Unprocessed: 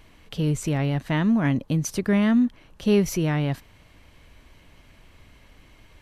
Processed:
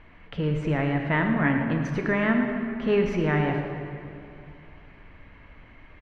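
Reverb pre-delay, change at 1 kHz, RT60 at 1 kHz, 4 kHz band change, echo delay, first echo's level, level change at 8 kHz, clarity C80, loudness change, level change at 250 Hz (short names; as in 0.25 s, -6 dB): 3 ms, +4.0 dB, 2.7 s, -5.0 dB, 0.113 s, -12.5 dB, under -15 dB, 4.5 dB, -1.5 dB, -3.0 dB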